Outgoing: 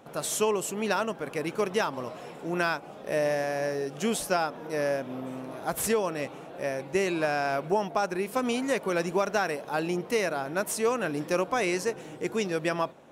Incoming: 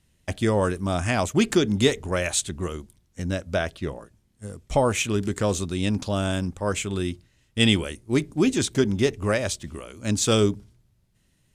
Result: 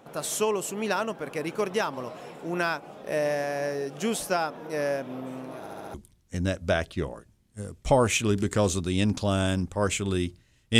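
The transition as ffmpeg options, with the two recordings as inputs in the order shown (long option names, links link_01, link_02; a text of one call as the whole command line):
ffmpeg -i cue0.wav -i cue1.wav -filter_complex "[0:a]apad=whole_dur=10.79,atrim=end=10.79,asplit=5[link_01][link_02][link_03][link_04][link_05];[link_01]atrim=end=5.662[link_06];[link_02]atrim=start=5.588:end=5.662[link_07];[link_03]atrim=start=5.588:end=5.662[link_08];[link_04]atrim=start=5.588:end=5.662[link_09];[link_05]atrim=start=5.588:end=5.662[link_10];[1:a]atrim=start=2.788:end=7.64[link_11];[link_06][link_07]acrossfade=duration=0.004:curve1=hsin:curve2=hsin[link_12];[link_12][link_08]acrossfade=duration=0.004:curve1=hsin:curve2=hsin[link_13];[link_13][link_09]acrossfade=duration=0.004:curve1=hsin:curve2=hsin[link_14];[link_14][link_10]acrossfade=duration=0.004:curve1=hsin:curve2=hsin[link_15];[link_15][link_11]acrossfade=duration=0.004:curve1=hsin:curve2=hsin" out.wav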